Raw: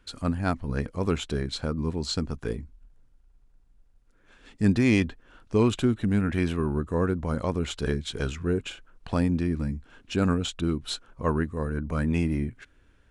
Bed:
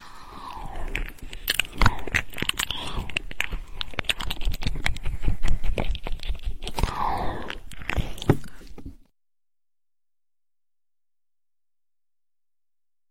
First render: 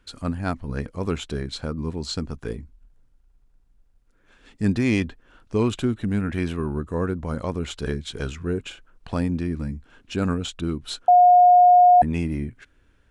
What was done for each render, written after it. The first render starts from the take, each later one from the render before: 11.08–12.02 bleep 717 Hz -9.5 dBFS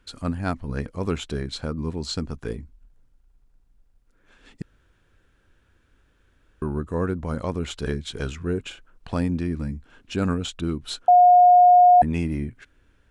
4.62–6.62 room tone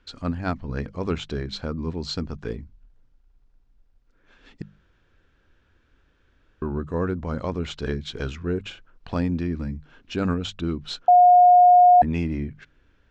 LPF 6000 Hz 24 dB/oct; notches 50/100/150/200 Hz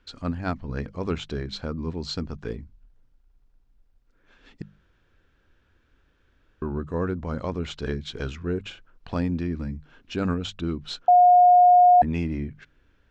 gain -1.5 dB

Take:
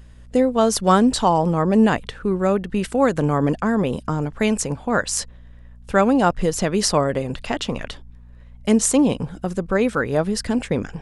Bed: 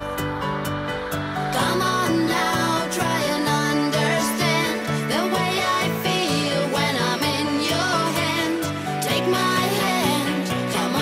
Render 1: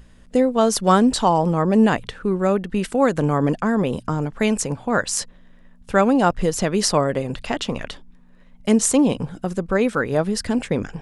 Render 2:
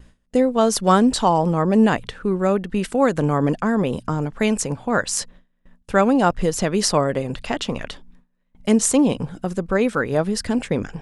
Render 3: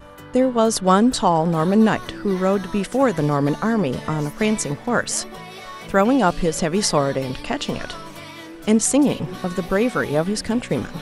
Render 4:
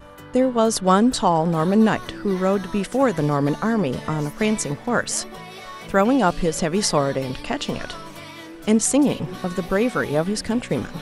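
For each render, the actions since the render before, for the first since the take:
de-hum 60 Hz, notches 2
gate with hold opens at -38 dBFS
add bed -15 dB
gain -1 dB

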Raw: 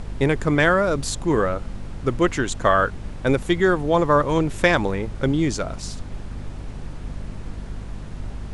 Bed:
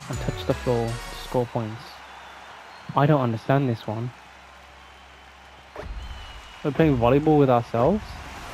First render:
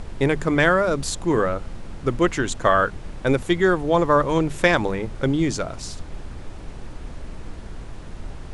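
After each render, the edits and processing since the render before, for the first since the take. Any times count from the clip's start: notches 50/100/150/200/250 Hz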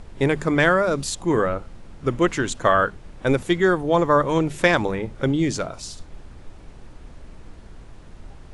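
noise print and reduce 7 dB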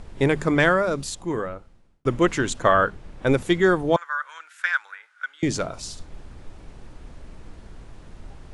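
0.51–2.05 fade out; 2.62–3.32 high shelf 6000 Hz -5 dB; 3.96–5.43 ladder high-pass 1400 Hz, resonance 80%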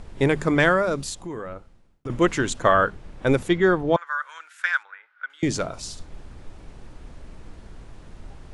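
1.12–2.1 compressor, threshold -29 dBFS; 3.48–4.07 air absorption 110 m; 4.83–5.3 air absorption 330 m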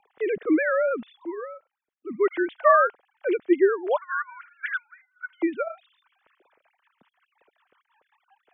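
sine-wave speech; rotary speaker horn 0.65 Hz, later 5.5 Hz, at 5.49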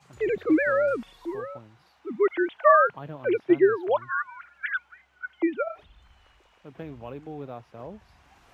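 add bed -20.5 dB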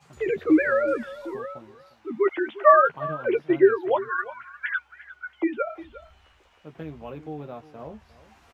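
doubler 13 ms -5.5 dB; echo 0.354 s -17 dB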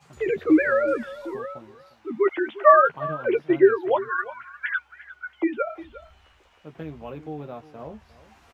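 gain +1 dB

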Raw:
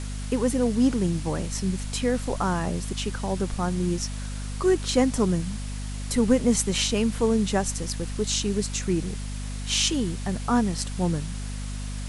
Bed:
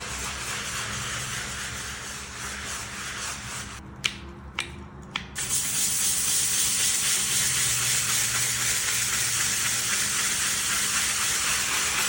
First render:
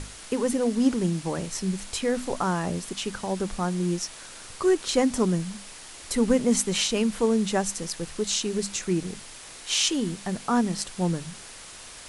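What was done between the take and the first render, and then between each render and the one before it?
notches 50/100/150/200/250 Hz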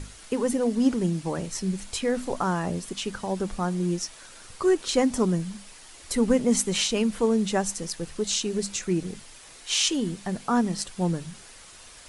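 denoiser 6 dB, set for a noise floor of -44 dBFS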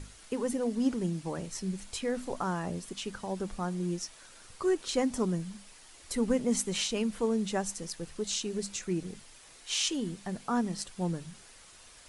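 gain -6.5 dB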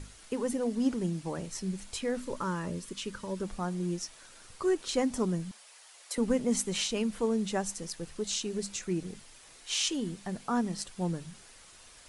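2.2–3.43 Butterworth band-stop 740 Hz, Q 3.2; 5.51–6.18 HPF 510 Hz 24 dB/oct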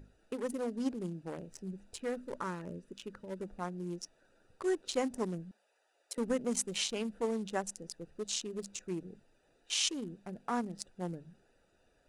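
Wiener smoothing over 41 samples; low shelf 250 Hz -12 dB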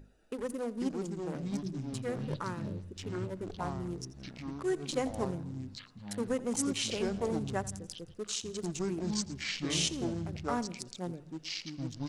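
feedback echo 84 ms, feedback 51%, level -19 dB; echoes that change speed 0.387 s, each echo -5 st, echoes 3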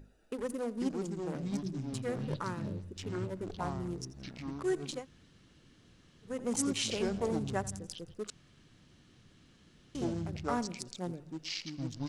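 4.95–6.34 room tone, crossfade 0.24 s; 8.3–9.95 room tone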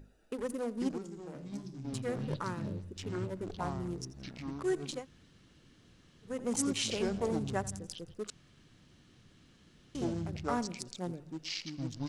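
0.98–1.85 resonator 68 Hz, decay 0.66 s, mix 70%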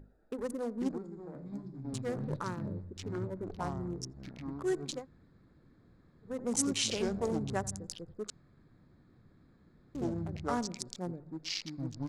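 Wiener smoothing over 15 samples; dynamic EQ 6000 Hz, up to +4 dB, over -54 dBFS, Q 0.77

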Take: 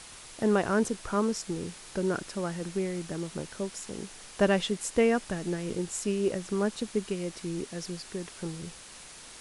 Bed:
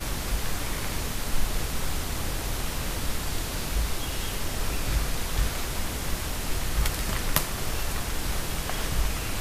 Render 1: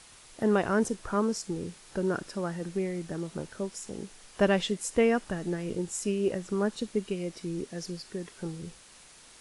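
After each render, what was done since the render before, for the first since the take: noise print and reduce 6 dB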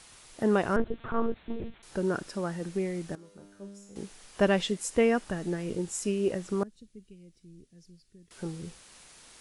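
0.76–1.83 monotone LPC vocoder at 8 kHz 230 Hz; 3.15–3.96 resonator 100 Hz, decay 1 s, mix 90%; 6.63–8.31 passive tone stack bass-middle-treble 10-0-1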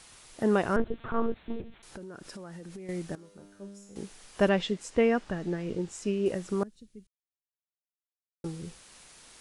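1.61–2.89 compressor 20:1, threshold -39 dBFS; 4.49–6.26 air absorption 87 m; 7.07–8.44 mute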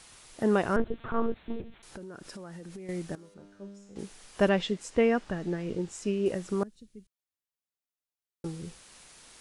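3.34–3.99 air absorption 81 m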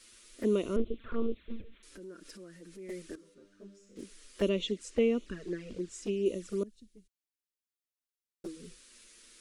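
fixed phaser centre 330 Hz, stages 4; envelope flanger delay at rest 11.2 ms, full sweep at -27.5 dBFS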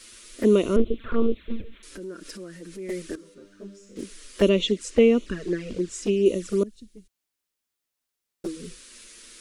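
gain +10 dB

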